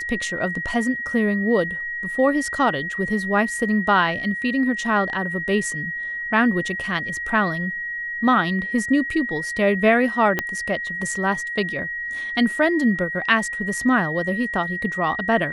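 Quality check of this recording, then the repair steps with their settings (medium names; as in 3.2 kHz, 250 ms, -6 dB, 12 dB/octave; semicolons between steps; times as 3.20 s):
whine 1.9 kHz -26 dBFS
10.39 s: pop -7 dBFS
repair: de-click; band-stop 1.9 kHz, Q 30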